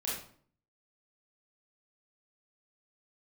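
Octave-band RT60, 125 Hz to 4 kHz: 0.70, 0.70, 0.55, 0.50, 0.45, 0.40 s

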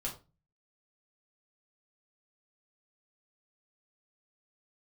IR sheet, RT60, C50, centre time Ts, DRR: 0.30 s, 10.5 dB, 19 ms, -3.5 dB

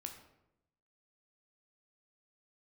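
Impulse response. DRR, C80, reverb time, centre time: 4.0 dB, 10.5 dB, 0.85 s, 20 ms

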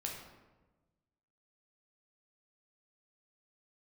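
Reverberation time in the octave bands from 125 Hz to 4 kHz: 1.7, 1.5, 1.3, 1.1, 0.90, 0.70 s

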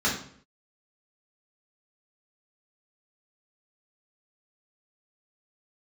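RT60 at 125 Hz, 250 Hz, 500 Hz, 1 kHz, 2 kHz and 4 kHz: 0.65, 0.65, 0.60, 0.55, 0.55, 0.50 s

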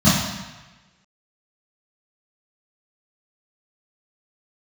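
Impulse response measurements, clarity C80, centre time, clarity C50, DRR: 4.0 dB, 75 ms, 0.5 dB, -14.0 dB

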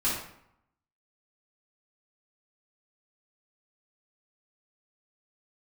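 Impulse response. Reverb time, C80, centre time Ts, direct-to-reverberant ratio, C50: 0.75 s, 6.0 dB, 50 ms, -10.0 dB, 2.0 dB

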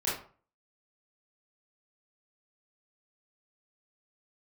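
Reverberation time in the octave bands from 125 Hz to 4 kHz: 0.50, 0.45, 0.40, 0.45, 0.35, 0.25 s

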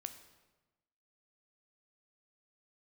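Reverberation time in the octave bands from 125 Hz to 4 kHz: 1.3, 1.3, 1.2, 1.1, 1.0, 0.90 s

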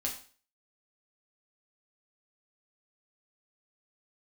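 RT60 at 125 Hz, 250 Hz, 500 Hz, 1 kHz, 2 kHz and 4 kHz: 0.45, 0.40, 0.40, 0.40, 0.40, 0.40 s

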